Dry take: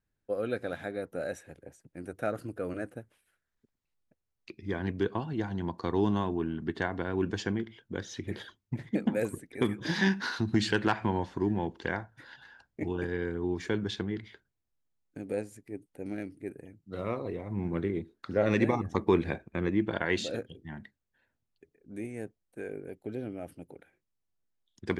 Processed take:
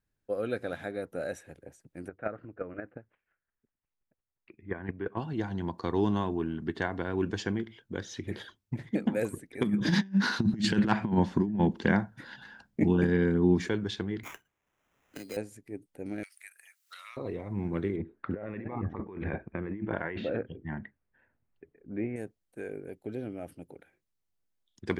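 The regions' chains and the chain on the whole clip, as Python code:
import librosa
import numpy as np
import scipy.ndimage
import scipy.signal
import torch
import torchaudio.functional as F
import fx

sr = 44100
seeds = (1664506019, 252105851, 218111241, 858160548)

y = fx.chain(x, sr, fx.lowpass(hz=2300.0, slope=24),
    fx.peak_eq(hz=1800.0, db=3.5, octaves=2.6),
    fx.chopper(hz=5.7, depth_pct=60, duty_pct=10), at=(2.08, 5.17))
y = fx.chain(y, sr, fx.peak_eq(hz=200.0, db=14.0, octaves=0.7),
    fx.over_compress(threshold_db=-24.0, ratio=-0.5), at=(9.63, 13.69))
y = fx.chain(y, sr, fx.weighting(curve='D'),
    fx.sample_hold(seeds[0], rate_hz=4500.0, jitter_pct=0),
    fx.band_squash(depth_pct=70), at=(14.23, 15.37))
y = fx.chain(y, sr, fx.cheby2_highpass(hz=290.0, order=4, stop_db=70),
    fx.high_shelf(hz=4300.0, db=12.0),
    fx.band_squash(depth_pct=100), at=(16.23, 17.17))
y = fx.chain(y, sr, fx.lowpass(hz=2300.0, slope=24),
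    fx.over_compress(threshold_db=-35.0, ratio=-1.0), at=(17.96, 22.16))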